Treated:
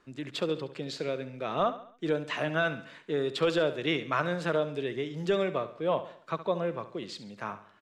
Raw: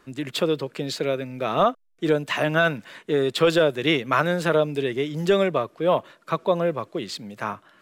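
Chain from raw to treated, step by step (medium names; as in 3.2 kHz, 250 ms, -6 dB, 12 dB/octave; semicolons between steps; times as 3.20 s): low-pass 7.2 kHz 12 dB/octave; on a send: feedback delay 69 ms, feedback 46%, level -13.5 dB; on the sum: trim -8 dB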